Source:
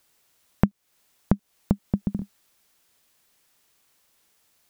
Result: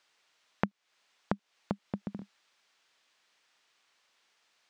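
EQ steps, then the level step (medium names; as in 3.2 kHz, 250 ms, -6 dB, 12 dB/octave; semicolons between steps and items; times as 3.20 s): high-pass 1.2 kHz 6 dB/octave; distance through air 140 m; +3.5 dB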